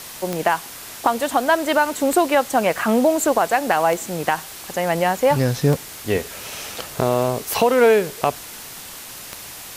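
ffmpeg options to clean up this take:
-af "adeclick=t=4,afwtdn=0.018"

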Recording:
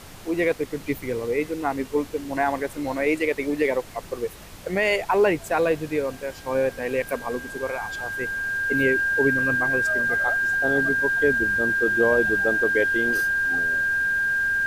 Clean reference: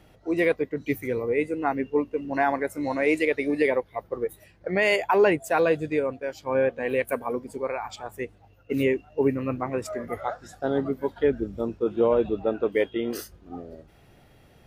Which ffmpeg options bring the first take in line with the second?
-af "adeclick=t=4,bandreject=f=95.6:t=h:w=4,bandreject=f=191.2:t=h:w=4,bandreject=f=286.8:t=h:w=4,bandreject=f=382.4:t=h:w=4,bandreject=f=1600:w=30,afftdn=nr=15:nf=-40"

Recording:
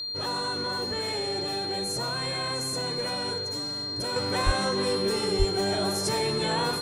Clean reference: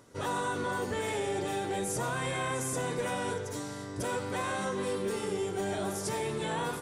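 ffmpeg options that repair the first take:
-filter_complex "[0:a]bandreject=f=4200:w=30,asplit=3[s0][s1][s2];[s0]afade=t=out:st=4.45:d=0.02[s3];[s1]highpass=f=140:w=0.5412,highpass=f=140:w=1.3066,afade=t=in:st=4.45:d=0.02,afade=t=out:st=4.57:d=0.02[s4];[s2]afade=t=in:st=4.57:d=0.02[s5];[s3][s4][s5]amix=inputs=3:normalize=0,asplit=3[s6][s7][s8];[s6]afade=t=out:st=5.38:d=0.02[s9];[s7]highpass=f=140:w=0.5412,highpass=f=140:w=1.3066,afade=t=in:st=5.38:d=0.02,afade=t=out:st=5.5:d=0.02[s10];[s8]afade=t=in:st=5.5:d=0.02[s11];[s9][s10][s11]amix=inputs=3:normalize=0,asetnsamples=n=441:p=0,asendcmd='4.16 volume volume -5.5dB',volume=1"

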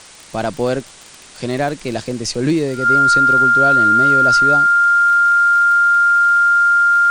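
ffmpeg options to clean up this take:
-af "adeclick=t=4,bandreject=f=1400:w=30,afwtdn=0.013"

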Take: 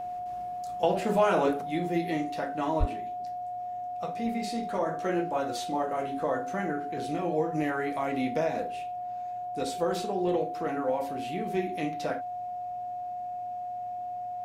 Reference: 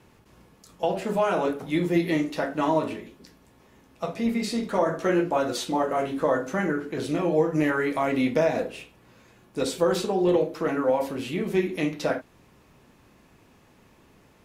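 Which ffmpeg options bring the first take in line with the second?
-filter_complex "[0:a]bandreject=f=111.9:t=h:w=4,bandreject=f=223.8:t=h:w=4,bandreject=f=335.7:t=h:w=4,bandreject=f=720:w=30,asplit=3[s0][s1][s2];[s0]afade=t=out:st=2.79:d=0.02[s3];[s1]highpass=f=140:w=0.5412,highpass=f=140:w=1.3066,afade=t=in:st=2.79:d=0.02,afade=t=out:st=2.91:d=0.02[s4];[s2]afade=t=in:st=2.91:d=0.02[s5];[s3][s4][s5]amix=inputs=3:normalize=0,asetnsamples=n=441:p=0,asendcmd='1.61 volume volume 6.5dB',volume=1"

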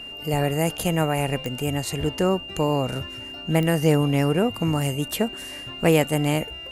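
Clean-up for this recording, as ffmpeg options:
-af "adeclick=t=4,bandreject=f=2800:w=30"

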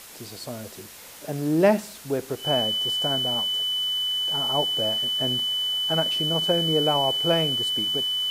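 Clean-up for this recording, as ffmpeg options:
-af "adeclick=t=4,bandreject=f=3000:w=30,afwtdn=0.0071"

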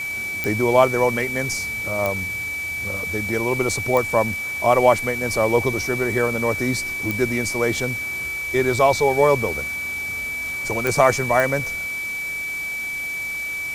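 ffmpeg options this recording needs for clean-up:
-af "adeclick=t=4,bandreject=f=2300:w=30,afwtdn=0.011"

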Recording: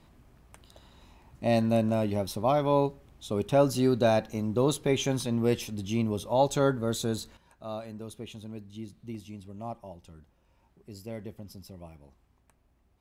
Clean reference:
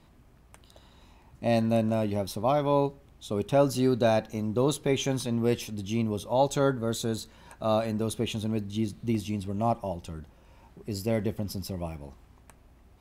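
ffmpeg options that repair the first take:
-af "asetnsamples=n=441:p=0,asendcmd='7.37 volume volume 11.5dB',volume=1"

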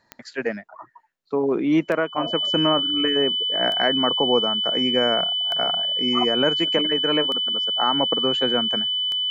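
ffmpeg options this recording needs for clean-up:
-af "adeclick=t=4,bandreject=f=3000:w=30"

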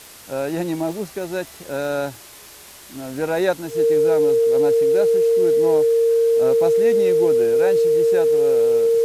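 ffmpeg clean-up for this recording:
-af "adeclick=t=4,bandreject=f=460:w=30,afftdn=nr=23:nf=-42"

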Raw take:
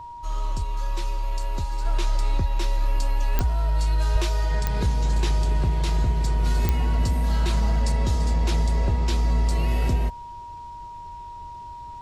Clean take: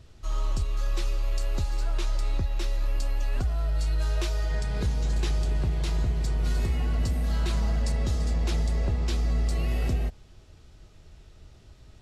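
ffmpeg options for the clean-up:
-filter_complex "[0:a]adeclick=t=4,bandreject=f=950:w=30,asplit=3[s0][s1][s2];[s0]afade=t=out:st=4.12:d=0.02[s3];[s1]highpass=f=140:w=0.5412,highpass=f=140:w=1.3066,afade=t=in:st=4.12:d=0.02,afade=t=out:st=4.24:d=0.02[s4];[s2]afade=t=in:st=4.24:d=0.02[s5];[s3][s4][s5]amix=inputs=3:normalize=0,asetnsamples=n=441:p=0,asendcmd='1.85 volume volume -4dB',volume=1"

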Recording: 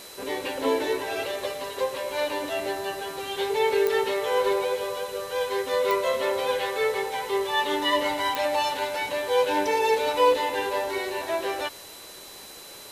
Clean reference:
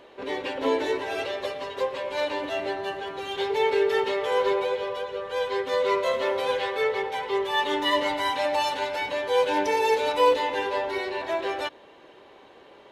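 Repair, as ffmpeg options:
-af "adeclick=t=4,bandreject=f=4000:w=30,afwtdn=0.0063"

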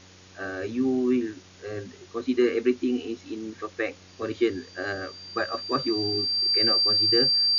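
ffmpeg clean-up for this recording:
-af "bandreject=f=92.8:t=h:w=4,bandreject=f=185.6:t=h:w=4,bandreject=f=278.4:t=h:w=4,bandreject=f=371.2:t=h:w=4,bandreject=f=464:t=h:w=4,bandreject=f=556.8:t=h:w=4,bandreject=f=4700:w=30,afwtdn=0.0035"

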